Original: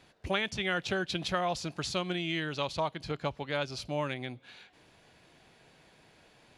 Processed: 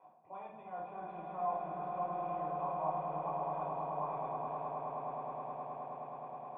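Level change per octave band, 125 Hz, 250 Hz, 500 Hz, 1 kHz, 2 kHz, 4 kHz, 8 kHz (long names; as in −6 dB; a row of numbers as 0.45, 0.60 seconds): −11.0 dB, −12.0 dB, −5.0 dB, +2.0 dB, −23.0 dB, below −35 dB, below −35 dB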